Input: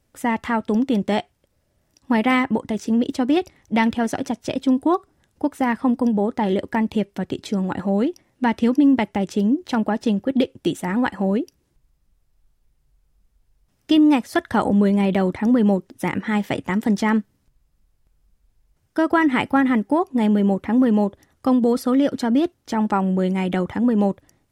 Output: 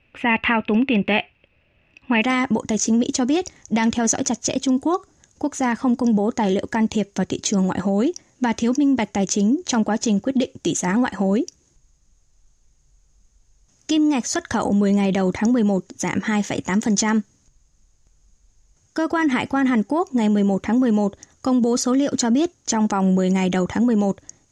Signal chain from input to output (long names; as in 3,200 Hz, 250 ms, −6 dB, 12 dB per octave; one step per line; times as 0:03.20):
brickwall limiter −16.5 dBFS, peak gain reduction 10 dB
low-pass with resonance 2,600 Hz, resonance Q 12, from 0:02.22 6,600 Hz
level +4 dB